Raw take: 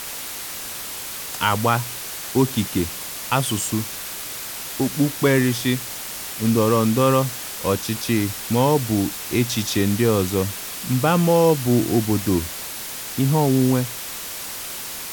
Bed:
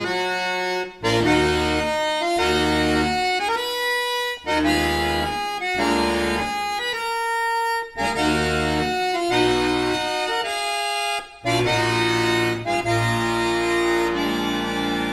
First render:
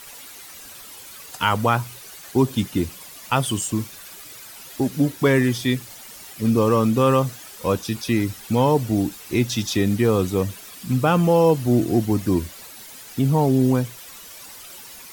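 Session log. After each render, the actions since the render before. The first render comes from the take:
broadband denoise 12 dB, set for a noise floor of −32 dBFS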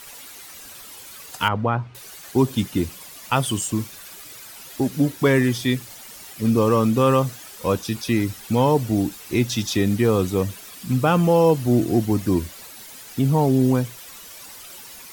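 0:01.48–0:01.95: head-to-tape spacing loss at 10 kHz 39 dB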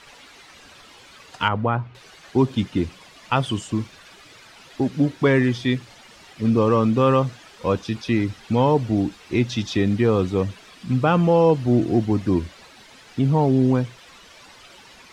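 low-pass filter 4,000 Hz 12 dB per octave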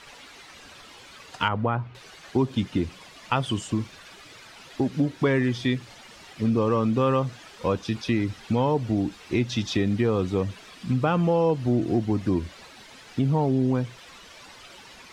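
downward compressor 2 to 1, threshold −22 dBFS, peak gain reduction 6 dB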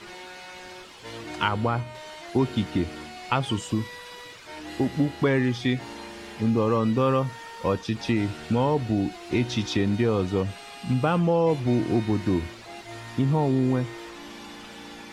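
mix in bed −20 dB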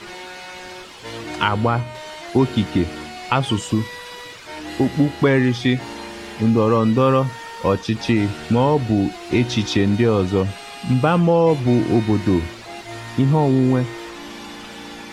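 level +6.5 dB
brickwall limiter −3 dBFS, peak gain reduction 1.5 dB

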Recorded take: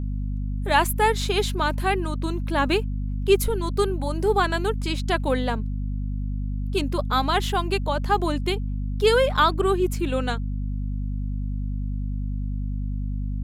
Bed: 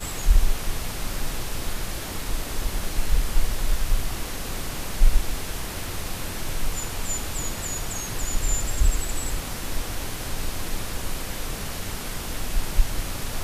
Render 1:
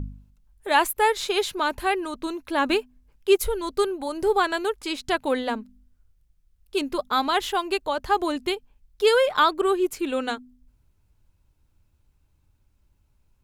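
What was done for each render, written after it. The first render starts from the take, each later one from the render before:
hum removal 50 Hz, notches 5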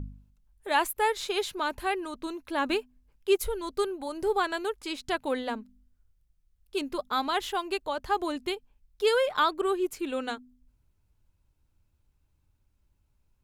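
level −5.5 dB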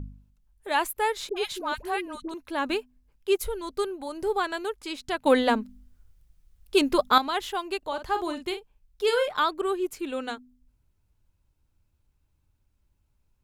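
0:01.29–0:02.34: all-pass dispersion highs, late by 72 ms, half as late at 700 Hz
0:05.26–0:07.18: clip gain +10 dB
0:07.78–0:09.28: double-tracking delay 46 ms −9 dB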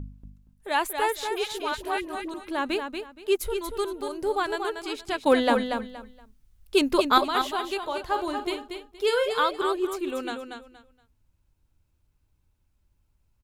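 repeating echo 235 ms, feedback 23%, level −6.5 dB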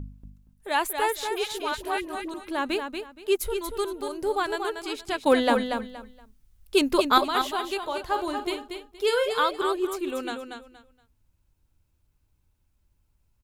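high-shelf EQ 7,700 Hz +3.5 dB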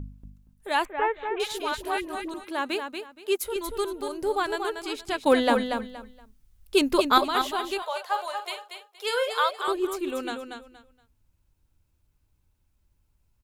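0:00.85–0:01.40: inverse Chebyshev low-pass filter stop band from 4,800 Hz
0:02.44–0:03.56: high-pass filter 320 Hz 6 dB per octave
0:07.82–0:09.68: Butterworth high-pass 490 Hz 48 dB per octave

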